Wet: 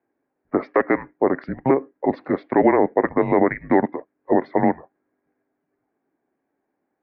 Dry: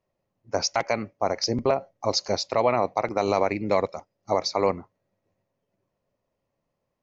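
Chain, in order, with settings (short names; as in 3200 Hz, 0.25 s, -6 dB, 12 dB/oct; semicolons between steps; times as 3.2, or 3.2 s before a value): HPF 340 Hz; mistuned SSB -270 Hz 520–2300 Hz; gain +8 dB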